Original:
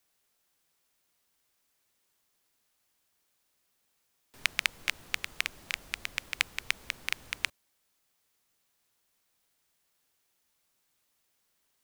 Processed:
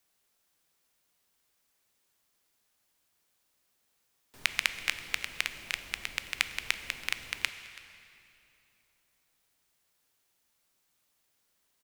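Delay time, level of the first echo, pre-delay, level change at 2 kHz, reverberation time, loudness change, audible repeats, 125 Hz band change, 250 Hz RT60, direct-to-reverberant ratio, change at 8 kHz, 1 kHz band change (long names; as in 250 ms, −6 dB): 330 ms, −20.5 dB, 12 ms, +0.5 dB, 2.9 s, +0.5 dB, 1, +0.5 dB, 3.4 s, 10.0 dB, +0.5 dB, +0.5 dB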